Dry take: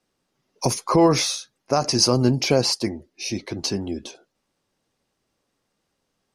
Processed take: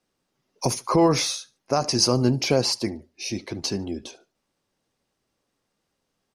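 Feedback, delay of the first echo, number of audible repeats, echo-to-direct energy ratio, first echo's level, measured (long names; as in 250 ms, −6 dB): 26%, 73 ms, 2, −22.5 dB, −23.0 dB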